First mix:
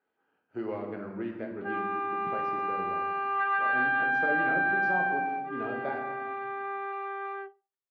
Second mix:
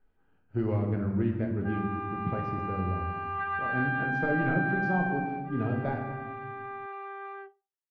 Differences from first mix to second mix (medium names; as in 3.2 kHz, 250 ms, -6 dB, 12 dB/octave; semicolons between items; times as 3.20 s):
speech: remove high-pass 370 Hz 12 dB/octave; background -4.5 dB